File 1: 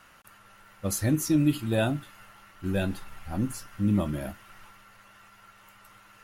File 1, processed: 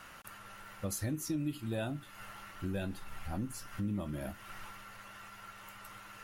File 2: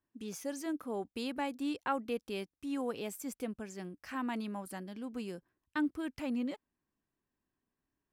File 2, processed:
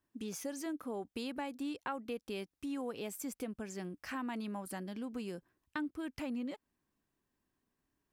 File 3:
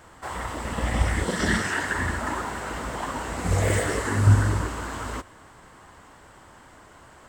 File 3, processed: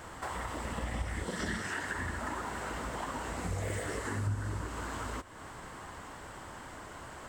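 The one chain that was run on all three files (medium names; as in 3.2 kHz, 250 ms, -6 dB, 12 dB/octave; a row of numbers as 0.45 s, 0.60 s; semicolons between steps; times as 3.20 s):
compression 3:1, threshold -42 dBFS; trim +3.5 dB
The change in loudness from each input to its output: -12.5 LU, -3.0 LU, -12.5 LU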